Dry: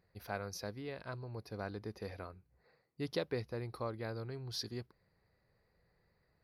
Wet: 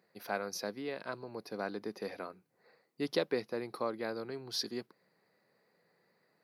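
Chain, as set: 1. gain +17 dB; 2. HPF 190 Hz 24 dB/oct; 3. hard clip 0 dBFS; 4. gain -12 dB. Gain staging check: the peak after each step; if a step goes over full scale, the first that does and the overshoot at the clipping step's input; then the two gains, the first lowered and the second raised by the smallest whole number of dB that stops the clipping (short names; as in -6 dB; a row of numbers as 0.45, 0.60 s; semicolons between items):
-5.5, -5.5, -5.5, -17.5 dBFS; no overload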